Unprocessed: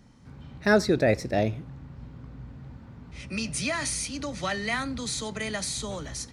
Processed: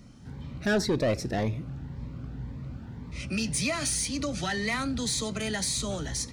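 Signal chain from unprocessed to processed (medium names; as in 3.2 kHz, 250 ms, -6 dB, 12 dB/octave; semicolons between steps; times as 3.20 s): in parallel at -2 dB: compression, threshold -32 dBFS, peak gain reduction 15.5 dB; on the sum: saturation -19.5 dBFS, distortion -11 dB; Shepard-style phaser rising 1.9 Hz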